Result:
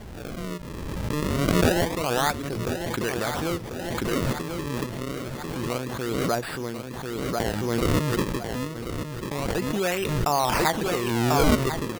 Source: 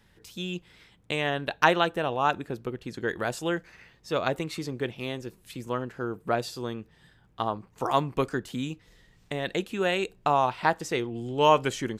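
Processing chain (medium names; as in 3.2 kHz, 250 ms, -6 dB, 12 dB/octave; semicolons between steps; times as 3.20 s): peaking EQ 67 Hz +5 dB; in parallel at -7 dB: sine folder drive 5 dB, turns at -4 dBFS; on the sum: decimation with a swept rate 34×, swing 160% 0.27 Hz; on a send: feedback delay 1042 ms, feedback 34%, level -9 dB; on the sum: swell ahead of each attack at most 22 dB/s; trim -7 dB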